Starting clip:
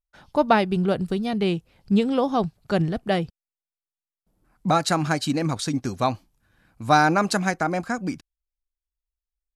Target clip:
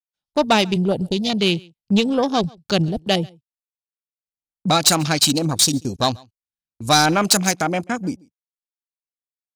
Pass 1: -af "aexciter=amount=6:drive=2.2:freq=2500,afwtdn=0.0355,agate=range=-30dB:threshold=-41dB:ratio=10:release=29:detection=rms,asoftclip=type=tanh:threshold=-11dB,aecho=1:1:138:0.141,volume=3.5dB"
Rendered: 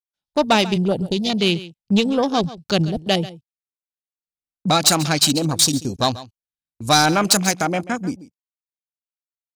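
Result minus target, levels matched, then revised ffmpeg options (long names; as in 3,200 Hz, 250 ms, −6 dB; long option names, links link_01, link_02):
echo-to-direct +9.5 dB
-af "aexciter=amount=6:drive=2.2:freq=2500,afwtdn=0.0355,agate=range=-30dB:threshold=-41dB:ratio=10:release=29:detection=rms,asoftclip=type=tanh:threshold=-11dB,aecho=1:1:138:0.0473,volume=3.5dB"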